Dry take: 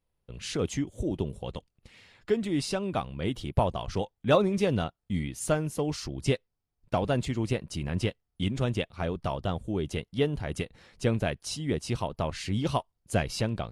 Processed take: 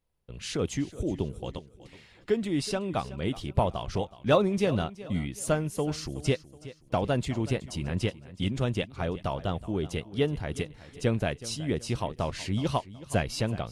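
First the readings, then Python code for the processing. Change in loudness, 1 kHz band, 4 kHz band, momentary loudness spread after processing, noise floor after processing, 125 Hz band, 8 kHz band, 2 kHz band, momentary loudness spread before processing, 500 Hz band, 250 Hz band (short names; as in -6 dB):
0.0 dB, 0.0 dB, 0.0 dB, 6 LU, -57 dBFS, 0.0 dB, 0.0 dB, 0.0 dB, 6 LU, 0.0 dB, 0.0 dB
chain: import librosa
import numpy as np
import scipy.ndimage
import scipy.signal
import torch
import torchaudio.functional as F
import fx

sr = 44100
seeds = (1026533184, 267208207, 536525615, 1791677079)

y = fx.echo_feedback(x, sr, ms=372, feedback_pct=37, wet_db=-17.0)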